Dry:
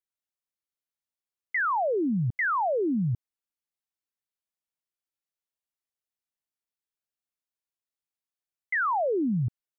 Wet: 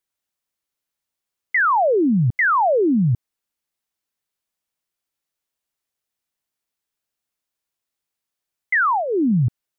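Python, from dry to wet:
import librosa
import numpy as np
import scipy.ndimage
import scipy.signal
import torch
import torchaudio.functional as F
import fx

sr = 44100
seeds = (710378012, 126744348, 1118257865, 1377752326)

y = fx.peak_eq(x, sr, hz=570.0, db=-9.0, octaves=0.67, at=(8.78, 9.31))
y = F.gain(torch.from_numpy(y), 9.0).numpy()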